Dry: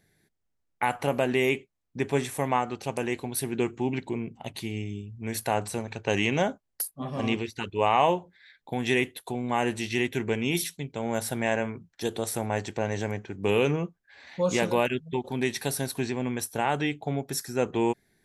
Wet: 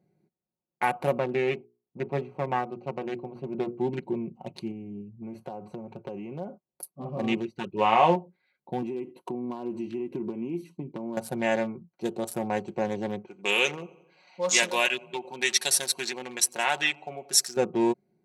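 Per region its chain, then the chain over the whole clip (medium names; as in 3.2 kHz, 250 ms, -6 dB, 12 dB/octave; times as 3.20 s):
1.18–3.79 s: partial rectifier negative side -7 dB + distance through air 250 m + hum notches 60/120/180/240/300/360/420/480 Hz
4.71–6.83 s: treble shelf 3 kHz -11 dB + compression, threshold -32 dBFS
7.73–8.16 s: low-pass 4.9 kHz + doubling 18 ms -6 dB
8.82–11.17 s: compression 10:1, threshold -33 dBFS + small resonant body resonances 290/1000 Hz, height 13 dB, ringing for 35 ms + tape noise reduction on one side only decoder only
13.27–17.57 s: frequency weighting ITU-R 468 + feedback delay 89 ms, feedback 54%, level -17 dB
whole clip: local Wiener filter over 25 samples; high-pass 130 Hz; comb 5.5 ms, depth 60%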